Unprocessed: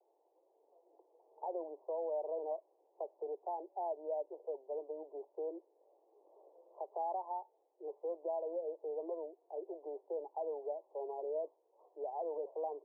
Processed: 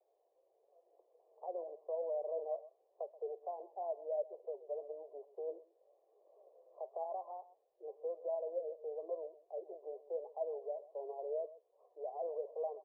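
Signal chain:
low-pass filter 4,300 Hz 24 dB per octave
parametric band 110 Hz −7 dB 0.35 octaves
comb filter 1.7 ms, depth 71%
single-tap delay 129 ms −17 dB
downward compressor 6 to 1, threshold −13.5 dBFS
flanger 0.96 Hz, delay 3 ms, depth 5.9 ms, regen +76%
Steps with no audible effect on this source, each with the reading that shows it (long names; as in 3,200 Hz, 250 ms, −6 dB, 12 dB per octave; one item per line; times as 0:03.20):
low-pass filter 4,300 Hz: nothing at its input above 1,100 Hz
parametric band 110 Hz: nothing at its input below 290 Hz
downward compressor, threshold −13.5 dBFS: peak of its input −25.0 dBFS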